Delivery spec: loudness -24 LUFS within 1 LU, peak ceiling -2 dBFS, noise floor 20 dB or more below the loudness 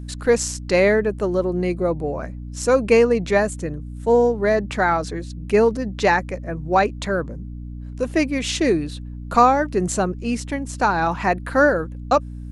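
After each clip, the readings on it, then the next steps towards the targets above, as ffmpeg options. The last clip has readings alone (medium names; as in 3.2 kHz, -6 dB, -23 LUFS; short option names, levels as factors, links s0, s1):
hum 60 Hz; highest harmonic 300 Hz; hum level -30 dBFS; loudness -20.5 LUFS; peak level -2.5 dBFS; loudness target -24.0 LUFS
-> -af "bandreject=f=60:t=h:w=4,bandreject=f=120:t=h:w=4,bandreject=f=180:t=h:w=4,bandreject=f=240:t=h:w=4,bandreject=f=300:t=h:w=4"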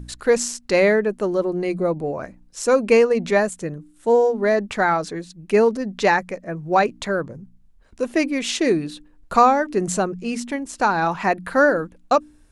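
hum not found; loudness -20.5 LUFS; peak level -3.0 dBFS; loudness target -24.0 LUFS
-> -af "volume=0.668"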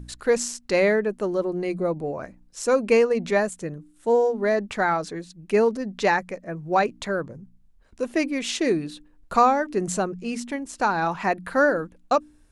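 loudness -24.0 LUFS; peak level -6.5 dBFS; noise floor -56 dBFS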